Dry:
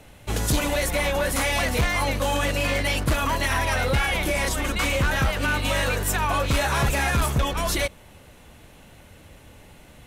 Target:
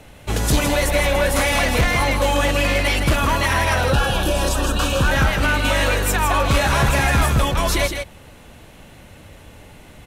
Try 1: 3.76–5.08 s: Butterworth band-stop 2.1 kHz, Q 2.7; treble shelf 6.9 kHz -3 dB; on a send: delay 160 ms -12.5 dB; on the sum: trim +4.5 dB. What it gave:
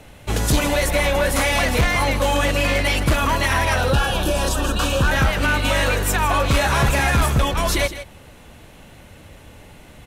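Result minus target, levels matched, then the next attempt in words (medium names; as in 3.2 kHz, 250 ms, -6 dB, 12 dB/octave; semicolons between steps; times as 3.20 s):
echo-to-direct -6 dB
3.76–5.08 s: Butterworth band-stop 2.1 kHz, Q 2.7; treble shelf 6.9 kHz -3 dB; on a send: delay 160 ms -6.5 dB; on the sum: trim +4.5 dB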